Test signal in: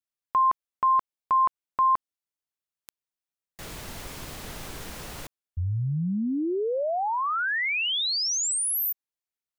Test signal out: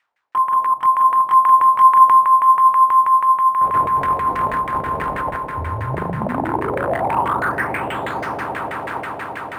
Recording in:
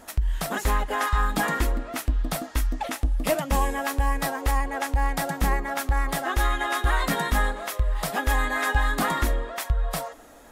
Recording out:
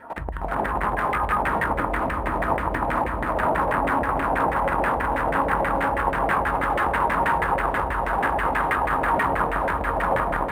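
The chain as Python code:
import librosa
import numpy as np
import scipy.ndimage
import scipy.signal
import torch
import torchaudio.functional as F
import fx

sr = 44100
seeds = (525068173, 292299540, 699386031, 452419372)

p1 = fx.fold_sine(x, sr, drive_db=3, ceiling_db=-10.5)
p2 = fx.room_shoebox(p1, sr, seeds[0], volume_m3=300.0, walls='mixed', distance_m=4.7)
p3 = fx.level_steps(p2, sr, step_db=21)
p4 = fx.hum_notches(p3, sr, base_hz=60, count=3)
p5 = fx.dmg_noise_colour(p4, sr, seeds[1], colour='violet', level_db=-45.0)
p6 = (np.mod(10.0 ** (15.5 / 20.0) * p5 + 1.0, 2.0) - 1.0) / 10.0 ** (15.5 / 20.0)
p7 = p6 + fx.echo_swell(p6, sr, ms=115, loudest=8, wet_db=-14, dry=0)
p8 = fx.filter_lfo_lowpass(p7, sr, shape='saw_down', hz=6.2, low_hz=610.0, high_hz=2000.0, q=2.8)
p9 = scipy.signal.sosfilt(scipy.signal.butter(2, 65.0, 'highpass', fs=sr, output='sos'), p8)
p10 = fx.peak_eq(p9, sr, hz=940.0, db=3.5, octaves=0.4)
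p11 = np.interp(np.arange(len(p10)), np.arange(len(p10))[::4], p10[::4])
y = p11 * librosa.db_to_amplitude(-3.0)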